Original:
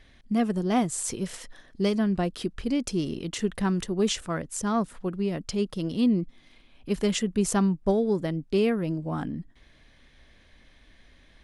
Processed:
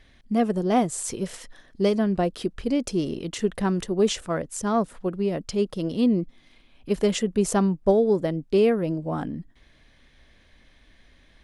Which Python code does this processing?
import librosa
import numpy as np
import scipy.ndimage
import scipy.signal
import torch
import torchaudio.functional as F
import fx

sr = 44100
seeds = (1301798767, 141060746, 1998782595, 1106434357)

y = fx.dynamic_eq(x, sr, hz=540.0, q=1.1, threshold_db=-40.0, ratio=4.0, max_db=7)